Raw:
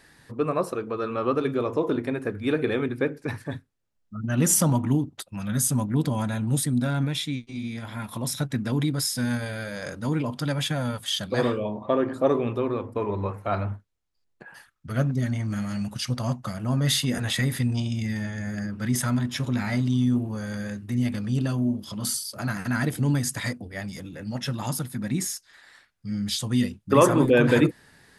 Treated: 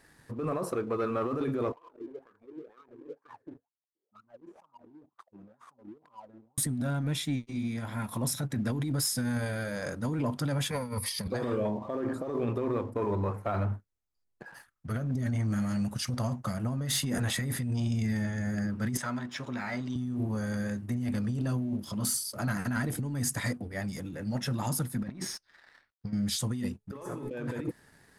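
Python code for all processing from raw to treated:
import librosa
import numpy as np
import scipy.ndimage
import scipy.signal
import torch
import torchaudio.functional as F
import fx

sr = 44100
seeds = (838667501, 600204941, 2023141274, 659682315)

y = fx.chain(x, sr, fx.cvsd(bps=64000),
    fx.over_compress(threshold_db=-32.0, ratio=-1.0),
    fx.wah_lfo(hz=2.1, low_hz=320.0, high_hz=1200.0, q=11.0), at=(1.72, 6.58))
y = fx.chain(y, sr, fx.ripple_eq(per_octave=0.89, db=16),
    fx.over_compress(threshold_db=-31.0, ratio=-0.5), at=(10.7, 11.28))
y = fx.chain(y, sr, fx.highpass(hz=660.0, slope=6),
    fx.air_absorb(metres=100.0), at=(18.97, 19.96))
y = fx.chain(y, sr, fx.law_mismatch(coded='A'),
    fx.savgol(points=15),
    fx.over_compress(threshold_db=-38.0, ratio=-1.0), at=(25.03, 26.13))
y = fx.chain(y, sr, fx.comb_fb(f0_hz=430.0, decay_s=0.43, harmonics='all', damping=0.0, mix_pct=80),
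    fx.over_compress(threshold_db=-39.0, ratio=-1.0), at=(26.76, 27.31))
y = fx.peak_eq(y, sr, hz=3300.0, db=-6.5, octaves=1.3)
y = fx.over_compress(y, sr, threshold_db=-27.0, ratio=-1.0)
y = fx.leveller(y, sr, passes=1)
y = y * 10.0 ** (-6.0 / 20.0)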